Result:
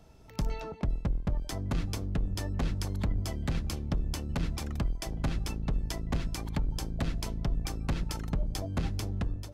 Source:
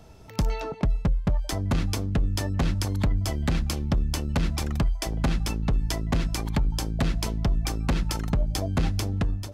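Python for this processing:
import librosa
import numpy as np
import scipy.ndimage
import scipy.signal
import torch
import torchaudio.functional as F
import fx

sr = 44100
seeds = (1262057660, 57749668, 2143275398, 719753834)

y = fx.octave_divider(x, sr, octaves=1, level_db=-4.0)
y = y * librosa.db_to_amplitude(-7.5)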